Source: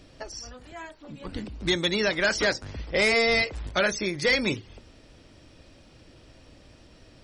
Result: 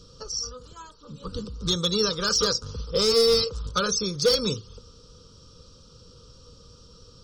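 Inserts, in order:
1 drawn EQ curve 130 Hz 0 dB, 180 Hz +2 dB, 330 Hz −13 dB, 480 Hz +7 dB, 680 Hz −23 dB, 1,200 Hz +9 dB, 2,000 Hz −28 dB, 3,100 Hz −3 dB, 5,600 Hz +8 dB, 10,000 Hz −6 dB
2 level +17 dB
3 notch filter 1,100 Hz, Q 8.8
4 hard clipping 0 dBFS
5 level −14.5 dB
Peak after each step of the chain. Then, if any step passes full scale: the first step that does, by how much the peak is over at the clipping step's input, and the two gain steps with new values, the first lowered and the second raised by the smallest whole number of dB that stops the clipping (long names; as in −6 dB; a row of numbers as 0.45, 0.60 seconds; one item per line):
−9.0, +8.0, +8.0, 0.0, −14.5 dBFS
step 2, 8.0 dB
step 2 +9 dB, step 5 −6.5 dB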